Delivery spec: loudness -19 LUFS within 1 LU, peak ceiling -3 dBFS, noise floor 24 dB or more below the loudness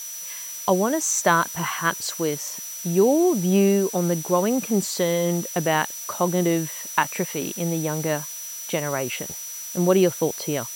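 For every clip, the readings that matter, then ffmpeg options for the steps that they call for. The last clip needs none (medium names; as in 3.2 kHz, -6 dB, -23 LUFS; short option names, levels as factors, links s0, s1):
steady tone 5.9 kHz; tone level -34 dBFS; noise floor -35 dBFS; noise floor target -47 dBFS; loudness -23.0 LUFS; peak level -2.5 dBFS; loudness target -19.0 LUFS
-> -af "bandreject=f=5900:w=30"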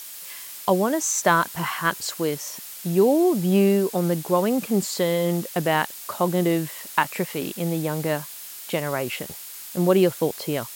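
steady tone not found; noise floor -39 dBFS; noise floor target -47 dBFS
-> -af "afftdn=nr=8:nf=-39"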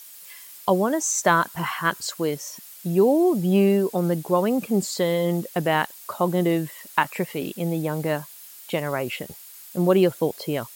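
noise floor -44 dBFS; noise floor target -48 dBFS
-> -af "afftdn=nr=6:nf=-44"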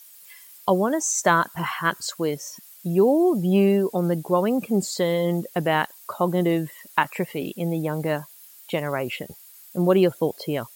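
noise floor -48 dBFS; loudness -23.5 LUFS; peak level -2.5 dBFS; loudness target -19.0 LUFS
-> -af "volume=1.68,alimiter=limit=0.708:level=0:latency=1"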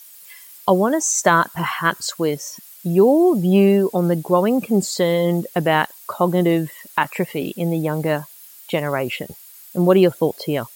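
loudness -19.0 LUFS; peak level -3.0 dBFS; noise floor -44 dBFS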